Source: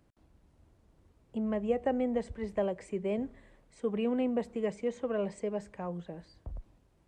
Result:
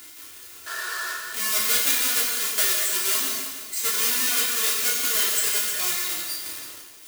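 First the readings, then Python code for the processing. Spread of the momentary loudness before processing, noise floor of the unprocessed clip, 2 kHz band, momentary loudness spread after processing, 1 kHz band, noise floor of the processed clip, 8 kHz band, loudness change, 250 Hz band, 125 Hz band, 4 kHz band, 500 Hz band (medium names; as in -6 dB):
15 LU, -68 dBFS, +21.5 dB, 14 LU, +8.0 dB, -44 dBFS, no reading, +12.5 dB, -11.0 dB, under -10 dB, +30.0 dB, -7.0 dB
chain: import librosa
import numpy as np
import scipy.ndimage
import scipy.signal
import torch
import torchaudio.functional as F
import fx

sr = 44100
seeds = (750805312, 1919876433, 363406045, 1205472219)

p1 = fx.halfwave_hold(x, sr)
p2 = fx.spec_paint(p1, sr, seeds[0], shape='noise', start_s=0.66, length_s=0.48, low_hz=350.0, high_hz=1900.0, level_db=-40.0)
p3 = scipy.signal.sosfilt(scipy.signal.butter(2, 82.0, 'highpass', fs=sr, output='sos'), p2)
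p4 = fx.peak_eq(p3, sr, hz=770.0, db=-13.5, octaves=0.47)
p5 = p4 + 0.7 * np.pad(p4, (int(2.9 * sr / 1000.0), 0))[:len(p4)]
p6 = fx.dereverb_blind(p5, sr, rt60_s=1.2)
p7 = fx.power_curve(p6, sr, exponent=0.5)
p8 = np.diff(p7, prepend=0.0)
p9 = p8 + fx.room_early_taps(p8, sr, ms=(11, 33), db=(-6.0, -4.0), dry=0)
p10 = fx.rev_gated(p9, sr, seeds[1], gate_ms=260, shape='flat', drr_db=-1.0)
p11 = fx.echo_crushed(p10, sr, ms=312, feedback_pct=35, bits=7, wet_db=-9.0)
y = F.gain(torch.from_numpy(p11), 5.0).numpy()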